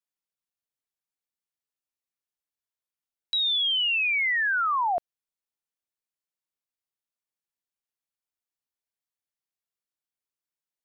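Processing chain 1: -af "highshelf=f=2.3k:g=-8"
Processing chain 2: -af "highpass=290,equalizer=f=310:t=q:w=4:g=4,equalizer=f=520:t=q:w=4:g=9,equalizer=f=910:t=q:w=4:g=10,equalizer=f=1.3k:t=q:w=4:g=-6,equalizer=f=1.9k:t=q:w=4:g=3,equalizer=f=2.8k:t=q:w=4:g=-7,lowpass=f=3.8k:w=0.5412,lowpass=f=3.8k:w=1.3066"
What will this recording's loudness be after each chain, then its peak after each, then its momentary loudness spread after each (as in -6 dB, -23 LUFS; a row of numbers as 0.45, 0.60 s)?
-27.0, -23.5 LUFS; -22.0, -12.0 dBFS; 5, 7 LU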